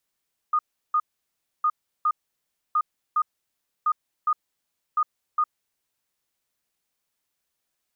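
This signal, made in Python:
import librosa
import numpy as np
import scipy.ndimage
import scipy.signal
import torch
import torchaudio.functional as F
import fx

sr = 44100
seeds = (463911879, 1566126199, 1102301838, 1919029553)

y = fx.beep_pattern(sr, wave='sine', hz=1230.0, on_s=0.06, off_s=0.35, beeps=2, pause_s=0.64, groups=5, level_db=-18.0)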